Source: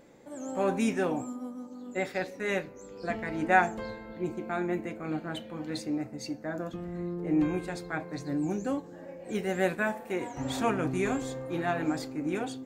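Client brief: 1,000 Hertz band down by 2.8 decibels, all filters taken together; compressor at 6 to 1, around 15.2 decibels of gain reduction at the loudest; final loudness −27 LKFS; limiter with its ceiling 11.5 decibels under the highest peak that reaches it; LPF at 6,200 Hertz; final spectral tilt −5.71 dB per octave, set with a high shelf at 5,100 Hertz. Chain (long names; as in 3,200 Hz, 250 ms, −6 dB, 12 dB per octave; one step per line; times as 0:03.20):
low-pass filter 6,200 Hz
parametric band 1,000 Hz −4.5 dB
high-shelf EQ 5,100 Hz +3.5 dB
downward compressor 6 to 1, threshold −36 dBFS
level +17.5 dB
brickwall limiter −18.5 dBFS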